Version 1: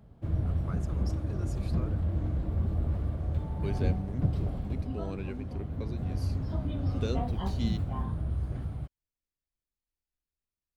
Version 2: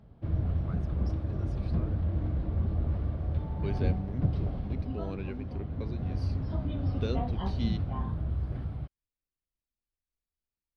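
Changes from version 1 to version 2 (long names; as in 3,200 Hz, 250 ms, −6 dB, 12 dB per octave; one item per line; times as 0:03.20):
first voice −4.5 dB
master: add Savitzky-Golay smoothing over 15 samples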